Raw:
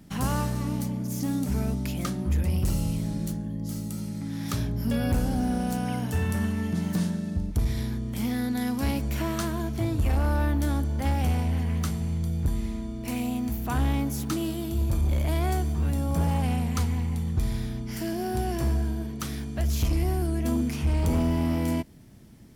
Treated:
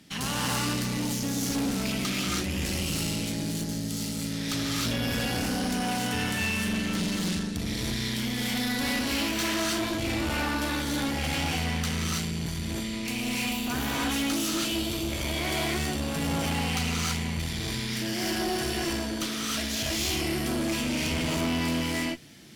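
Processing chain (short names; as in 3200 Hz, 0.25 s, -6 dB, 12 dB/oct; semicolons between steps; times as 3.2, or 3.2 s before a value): weighting filter D; non-linear reverb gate 0.35 s rising, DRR -5 dB; tube stage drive 24 dB, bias 0.55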